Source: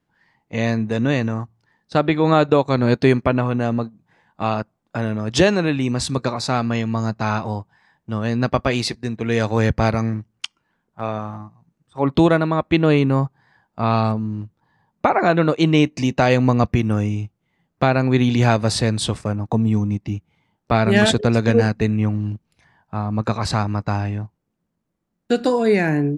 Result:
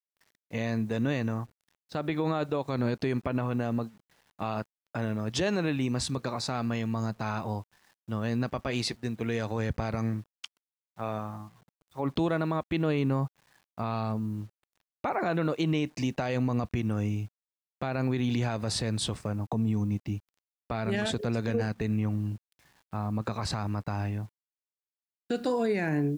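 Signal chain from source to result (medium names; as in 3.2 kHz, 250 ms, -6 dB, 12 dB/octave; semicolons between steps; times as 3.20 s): bit crusher 9-bit; peak limiter -12 dBFS, peak gain reduction 10.5 dB; trim -7.5 dB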